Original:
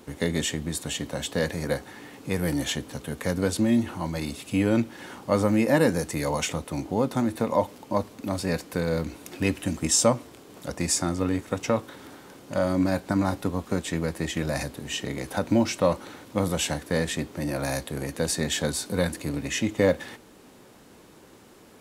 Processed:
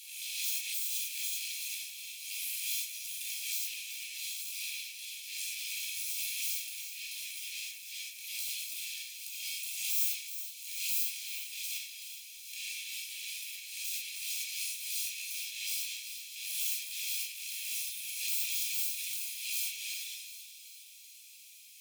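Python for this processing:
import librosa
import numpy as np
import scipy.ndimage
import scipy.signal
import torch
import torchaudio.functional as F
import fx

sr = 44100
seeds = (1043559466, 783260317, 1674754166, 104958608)

y = fx.lower_of_two(x, sr, delay_ms=1.2)
y = fx.tube_stage(y, sr, drive_db=30.0, bias=0.4)
y = np.abs(y)
y = scipy.signal.sosfilt(scipy.signal.butter(12, 2300.0, 'highpass', fs=sr, output='sos'), y)
y = fx.high_shelf(y, sr, hz=11000.0, db=6.5)
y = fx.echo_split(y, sr, split_hz=2900.0, low_ms=111, high_ms=377, feedback_pct=52, wet_db=-11.0)
y = fx.rev_gated(y, sr, seeds[0], gate_ms=140, shape='flat', drr_db=-5.5)
y = fx.pre_swell(y, sr, db_per_s=48.0)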